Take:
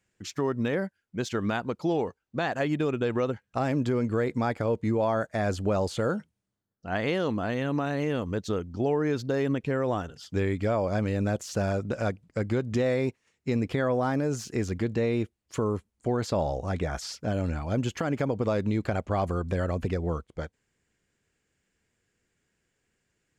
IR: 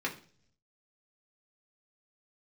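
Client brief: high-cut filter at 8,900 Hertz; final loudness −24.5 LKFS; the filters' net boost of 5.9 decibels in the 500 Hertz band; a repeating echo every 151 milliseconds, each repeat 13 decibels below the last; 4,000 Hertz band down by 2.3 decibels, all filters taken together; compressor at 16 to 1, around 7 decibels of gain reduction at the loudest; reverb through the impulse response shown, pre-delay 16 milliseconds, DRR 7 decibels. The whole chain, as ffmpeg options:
-filter_complex "[0:a]lowpass=8900,equalizer=frequency=500:width_type=o:gain=7,equalizer=frequency=4000:width_type=o:gain=-3,acompressor=threshold=-24dB:ratio=16,aecho=1:1:151|302|453:0.224|0.0493|0.0108,asplit=2[link_01][link_02];[1:a]atrim=start_sample=2205,adelay=16[link_03];[link_02][link_03]afir=irnorm=-1:irlink=0,volume=-13dB[link_04];[link_01][link_04]amix=inputs=2:normalize=0,volume=4.5dB"

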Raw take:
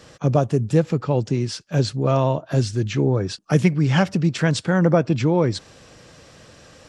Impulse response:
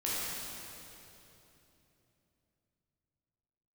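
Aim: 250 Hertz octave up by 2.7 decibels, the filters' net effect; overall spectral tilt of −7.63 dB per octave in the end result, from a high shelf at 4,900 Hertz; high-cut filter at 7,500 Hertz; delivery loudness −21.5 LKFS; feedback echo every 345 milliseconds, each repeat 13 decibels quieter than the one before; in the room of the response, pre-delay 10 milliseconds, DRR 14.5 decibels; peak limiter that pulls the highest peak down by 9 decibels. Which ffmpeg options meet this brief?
-filter_complex "[0:a]lowpass=7500,equalizer=frequency=250:width_type=o:gain=4.5,highshelf=frequency=4900:gain=-9,alimiter=limit=-11.5dB:level=0:latency=1,aecho=1:1:345|690|1035:0.224|0.0493|0.0108,asplit=2[link_01][link_02];[1:a]atrim=start_sample=2205,adelay=10[link_03];[link_02][link_03]afir=irnorm=-1:irlink=0,volume=-21.5dB[link_04];[link_01][link_04]amix=inputs=2:normalize=0,volume=0.5dB"

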